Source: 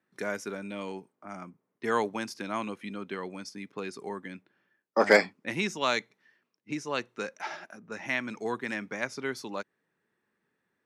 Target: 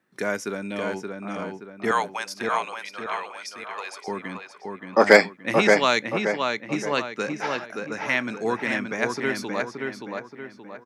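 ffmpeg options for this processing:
ffmpeg -i in.wav -filter_complex "[0:a]asettb=1/sr,asplit=3[link_01][link_02][link_03];[link_01]atrim=end=1.914[link_04];[link_02]atrim=start=1.91:end=4.08,asetpts=PTS-STARTPTS,afade=type=in:duration=0.004:curve=qsin,afade=type=out:start_time=2.166:duration=0.004:curve=qsin,highpass=frequency=630:width=0.5412,highpass=frequency=630:width=1.3066[link_05];[link_03]atrim=start=4.076[link_06];[link_04][link_05]acrossfade=duration=0.004:curve1=hsin:curve2=qsin[link_07];[link_07][link_06]acrossfade=duration=0.004:curve1=qsin:curve2=hsin,asplit=2[link_08][link_09];[link_09]adelay=575,lowpass=frequency=3300:poles=1,volume=-4dB,asplit=2[link_10][link_11];[link_11]adelay=575,lowpass=frequency=3300:poles=1,volume=0.43,asplit=2[link_12][link_13];[link_13]adelay=575,lowpass=frequency=3300:poles=1,volume=0.43,asplit=2[link_14][link_15];[link_15]adelay=575,lowpass=frequency=3300:poles=1,volume=0.43,asplit=2[link_16][link_17];[link_17]adelay=575,lowpass=frequency=3300:poles=1,volume=0.43[link_18];[link_08][link_10][link_12][link_14][link_16][link_18]amix=inputs=6:normalize=0,volume=6.5dB" out.wav

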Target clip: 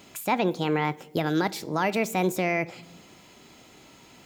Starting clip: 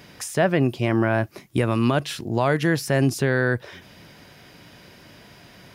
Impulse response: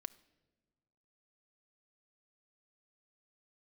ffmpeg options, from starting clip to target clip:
-filter_complex "[1:a]atrim=start_sample=2205[link_01];[0:a][link_01]afir=irnorm=-1:irlink=0,asetrate=59535,aresample=44100"

